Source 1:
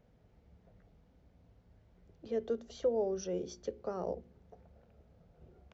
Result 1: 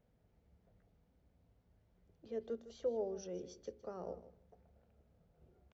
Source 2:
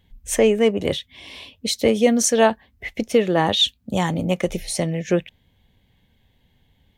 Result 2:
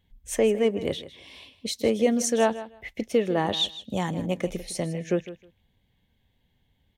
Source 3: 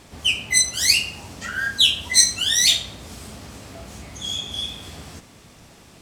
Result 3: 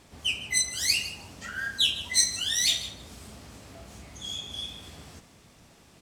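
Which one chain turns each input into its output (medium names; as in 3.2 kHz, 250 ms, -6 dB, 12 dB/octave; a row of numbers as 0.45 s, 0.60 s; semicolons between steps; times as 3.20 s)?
dynamic bell 350 Hz, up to +3 dB, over -31 dBFS, Q 0.71; feedback delay 157 ms, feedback 16%, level -15 dB; trim -8 dB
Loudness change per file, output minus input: -6.5 LU, -6.0 LU, -8.0 LU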